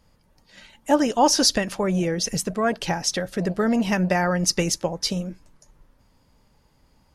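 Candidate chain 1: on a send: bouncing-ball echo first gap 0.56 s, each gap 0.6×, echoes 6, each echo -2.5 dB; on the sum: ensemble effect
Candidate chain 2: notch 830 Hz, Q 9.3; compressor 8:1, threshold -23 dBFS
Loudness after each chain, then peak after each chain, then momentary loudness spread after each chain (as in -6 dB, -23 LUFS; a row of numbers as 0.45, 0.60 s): -23.0, -28.0 LUFS; -6.5, -13.0 dBFS; 10, 4 LU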